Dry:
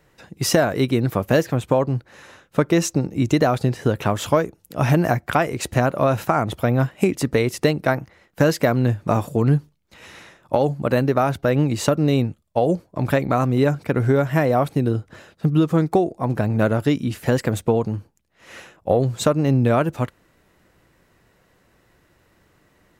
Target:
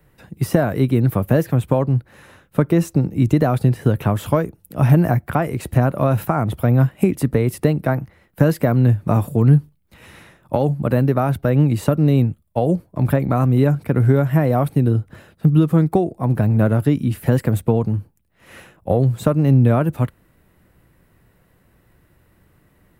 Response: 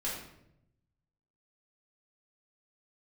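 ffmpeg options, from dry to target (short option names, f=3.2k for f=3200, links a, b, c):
-filter_complex "[0:a]bass=f=250:g=8,treble=f=4k:g=-6,acrossover=split=180|1600[a][b][c];[c]alimiter=level_in=3.5dB:limit=-24dB:level=0:latency=1:release=29,volume=-3.5dB[d];[a][b][d]amix=inputs=3:normalize=0,aexciter=amount=2.9:drive=7.9:freq=8.7k,volume=-1.5dB"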